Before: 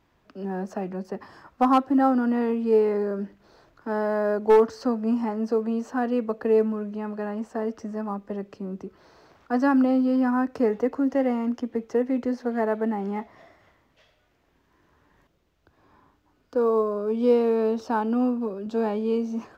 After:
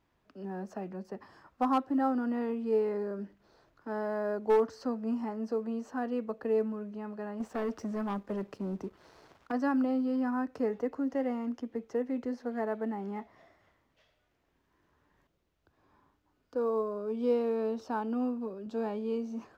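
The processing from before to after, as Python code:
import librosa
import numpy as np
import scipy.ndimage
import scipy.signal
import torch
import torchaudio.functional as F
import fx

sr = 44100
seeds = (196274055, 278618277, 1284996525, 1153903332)

y = fx.leveller(x, sr, passes=2, at=(7.4, 9.52))
y = y * 10.0 ** (-8.5 / 20.0)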